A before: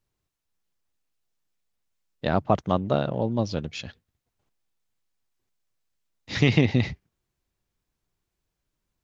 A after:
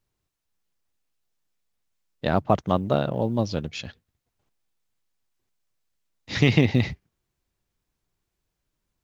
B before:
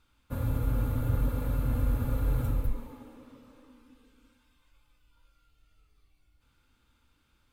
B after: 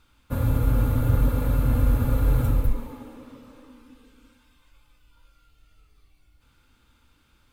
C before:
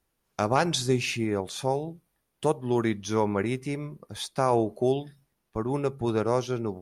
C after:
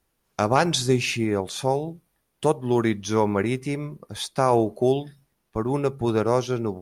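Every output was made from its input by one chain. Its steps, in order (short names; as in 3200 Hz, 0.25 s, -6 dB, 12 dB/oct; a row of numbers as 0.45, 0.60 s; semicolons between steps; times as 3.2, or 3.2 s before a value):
short-mantissa float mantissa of 6-bit; match loudness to -24 LUFS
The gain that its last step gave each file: +1.0, +7.0, +4.0 dB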